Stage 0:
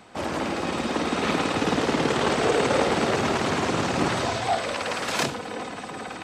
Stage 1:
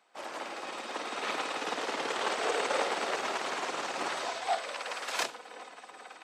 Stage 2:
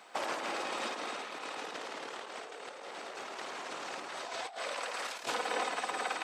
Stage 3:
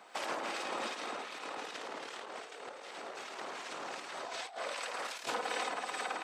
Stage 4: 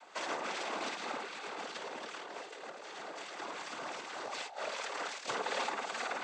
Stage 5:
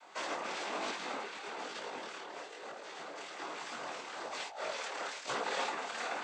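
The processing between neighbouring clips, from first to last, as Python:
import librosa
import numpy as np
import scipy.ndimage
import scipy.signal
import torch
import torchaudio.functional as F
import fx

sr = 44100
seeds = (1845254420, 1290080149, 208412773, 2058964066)

y1 = scipy.signal.sosfilt(scipy.signal.butter(2, 560.0, 'highpass', fs=sr, output='sos'), x)
y1 = fx.upward_expand(y1, sr, threshold_db=-46.0, expansion=1.5)
y1 = y1 * 10.0 ** (-4.0 / 20.0)
y2 = fx.over_compress(y1, sr, threshold_db=-45.0, ratio=-1.0)
y2 = y2 * 10.0 ** (4.5 / 20.0)
y3 = fx.harmonic_tremolo(y2, sr, hz=2.6, depth_pct=50, crossover_hz=1600.0)
y3 = fx.end_taper(y3, sr, db_per_s=160.0)
y3 = y3 * 10.0 ** (1.0 / 20.0)
y4 = fx.noise_vocoder(y3, sr, seeds[0], bands=16)
y4 = y4 * 10.0 ** (1.0 / 20.0)
y5 = fx.detune_double(y4, sr, cents=38)
y5 = y5 * 10.0 ** (3.5 / 20.0)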